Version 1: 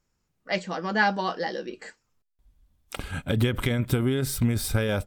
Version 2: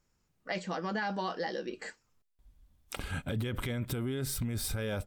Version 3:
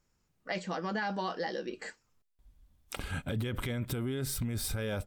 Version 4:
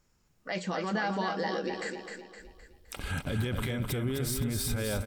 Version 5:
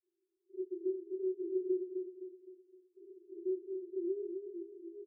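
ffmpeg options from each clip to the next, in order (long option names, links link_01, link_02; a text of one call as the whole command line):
ffmpeg -i in.wav -af "alimiter=limit=-19.5dB:level=0:latency=1:release=17,acompressor=threshold=-35dB:ratio=2" out.wav
ffmpeg -i in.wav -af anull out.wav
ffmpeg -i in.wav -filter_complex "[0:a]alimiter=level_in=4.5dB:limit=-24dB:level=0:latency=1:release=89,volume=-4.5dB,asplit=2[link_01][link_02];[link_02]aecho=0:1:258|516|774|1032|1290:0.501|0.221|0.097|0.0427|0.0188[link_03];[link_01][link_03]amix=inputs=2:normalize=0,volume=5dB" out.wav
ffmpeg -i in.wav -filter_complex "[0:a]asuperpass=centerf=370:order=20:qfactor=5.3,asplit=2[link_01][link_02];[link_02]adelay=24,volume=-4dB[link_03];[link_01][link_03]amix=inputs=2:normalize=0,volume=3dB" out.wav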